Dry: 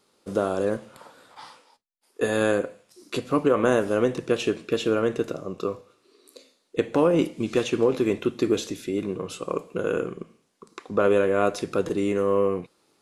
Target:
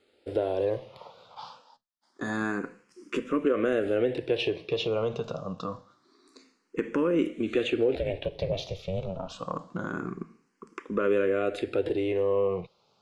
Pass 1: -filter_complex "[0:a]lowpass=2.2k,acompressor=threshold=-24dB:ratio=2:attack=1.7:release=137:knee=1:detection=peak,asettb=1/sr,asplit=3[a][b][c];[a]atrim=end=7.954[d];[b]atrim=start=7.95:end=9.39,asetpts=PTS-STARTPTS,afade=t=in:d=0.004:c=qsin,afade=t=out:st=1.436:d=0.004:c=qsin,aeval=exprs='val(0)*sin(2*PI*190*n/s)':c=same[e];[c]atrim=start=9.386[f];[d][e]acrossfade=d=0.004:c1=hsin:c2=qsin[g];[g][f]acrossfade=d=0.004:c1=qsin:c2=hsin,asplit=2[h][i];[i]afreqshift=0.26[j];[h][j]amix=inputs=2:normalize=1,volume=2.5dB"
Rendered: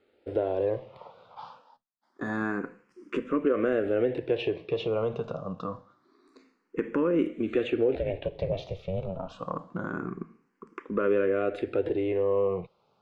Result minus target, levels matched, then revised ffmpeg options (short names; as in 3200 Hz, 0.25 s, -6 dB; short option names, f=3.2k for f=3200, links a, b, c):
4000 Hz band -6.5 dB
-filter_complex "[0:a]lowpass=4.7k,acompressor=threshold=-24dB:ratio=2:attack=1.7:release=137:knee=1:detection=peak,asettb=1/sr,asplit=3[a][b][c];[a]atrim=end=7.954[d];[b]atrim=start=7.95:end=9.39,asetpts=PTS-STARTPTS,afade=t=in:d=0.004:c=qsin,afade=t=out:st=1.436:d=0.004:c=qsin,aeval=exprs='val(0)*sin(2*PI*190*n/s)':c=same[e];[c]atrim=start=9.386[f];[d][e]acrossfade=d=0.004:c1=hsin:c2=qsin[g];[g][f]acrossfade=d=0.004:c1=qsin:c2=hsin,asplit=2[h][i];[i]afreqshift=0.26[j];[h][j]amix=inputs=2:normalize=1,volume=2.5dB"